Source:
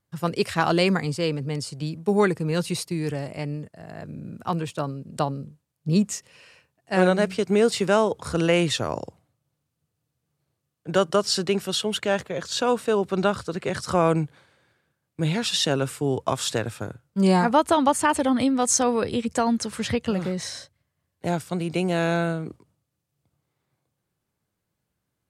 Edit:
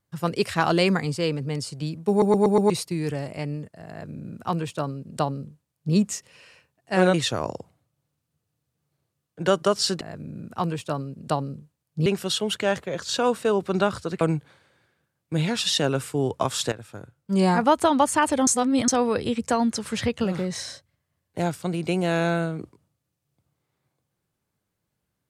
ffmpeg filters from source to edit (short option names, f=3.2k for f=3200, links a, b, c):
-filter_complex "[0:a]asplit=13[a][b][c][d][e][f][g][h][i][j][k][l][m];[a]atrim=end=2.222[n];[b]atrim=start=2.098:end=2.222[o];[c]atrim=start=2.098:end=2.222[p];[d]atrim=start=2.098:end=2.222[q];[e]atrim=start=2.098:end=2.222[r];[f]atrim=start=2.698:end=7.142[s];[g]atrim=start=8.618:end=11.492[t];[h]atrim=start=3.898:end=5.952[u];[i]atrim=start=11.488:end=13.642[v];[j]atrim=start=14.078:end=16.59,asetpts=PTS-STARTPTS,afade=t=out:st=2.508:d=0.004:c=hsin:silence=0.223872[w];[k]atrim=start=16.59:end=18.342,asetpts=PTS-STARTPTS,afade=t=in:d=0.9:silence=0.223872[x];[l]atrim=start=18.338:end=18.752,asetpts=PTS-STARTPTS,areverse[y];[m]atrim=start=18.748[z];[n][o]acrossfade=d=0.004:c1=hsin:c2=hsin[aa];[aa][p]acrossfade=d=0.004:c1=hsin:c2=hsin[ab];[ab][q]acrossfade=d=0.004:c1=hsin:c2=hsin[ac];[ac][r]acrossfade=d=0.004:c1=hsin:c2=hsin[ad];[ad][s]acrossfade=d=0.004:c1=hsin:c2=hsin[ae];[ae][t]acrossfade=d=0.004:c1=hsin:c2=hsin[af];[af][u]acrossfade=d=0.004:c1=hsin:c2=hsin[ag];[ag][v]acrossfade=d=0.004:c1=hsin:c2=hsin[ah];[w][x]concat=n=2:v=0:a=1[ai];[ah][ai]acrossfade=d=0.004:c1=hsin:c2=hsin[aj];[aj][y]acrossfade=d=0.004:c1=hsin:c2=hsin[ak];[ak][z]acrossfade=d=0.004:c1=hsin:c2=hsin"